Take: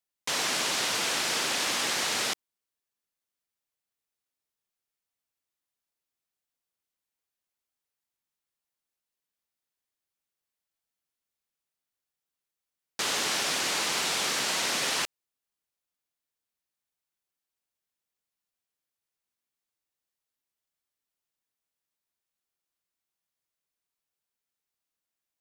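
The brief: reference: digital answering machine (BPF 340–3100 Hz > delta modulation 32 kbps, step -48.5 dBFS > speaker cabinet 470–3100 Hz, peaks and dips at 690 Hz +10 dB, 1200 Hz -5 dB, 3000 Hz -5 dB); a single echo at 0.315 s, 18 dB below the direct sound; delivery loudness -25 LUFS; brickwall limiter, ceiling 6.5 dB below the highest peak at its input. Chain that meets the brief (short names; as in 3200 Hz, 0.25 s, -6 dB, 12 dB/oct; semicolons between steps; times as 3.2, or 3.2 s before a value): limiter -22 dBFS; BPF 340–3100 Hz; echo 0.315 s -18 dB; delta modulation 32 kbps, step -48.5 dBFS; speaker cabinet 470–3100 Hz, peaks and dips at 690 Hz +10 dB, 1200 Hz -5 dB, 3000 Hz -5 dB; gain +21 dB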